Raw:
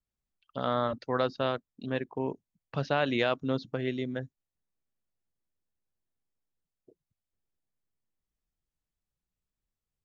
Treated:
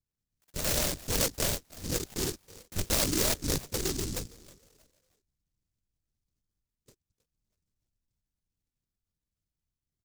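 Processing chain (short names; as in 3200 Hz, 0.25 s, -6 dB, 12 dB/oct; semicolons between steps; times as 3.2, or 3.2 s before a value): frequency-shifting echo 0.316 s, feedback 32%, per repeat +88 Hz, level -20 dB; LPC vocoder at 8 kHz whisper; noise-modulated delay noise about 5800 Hz, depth 0.34 ms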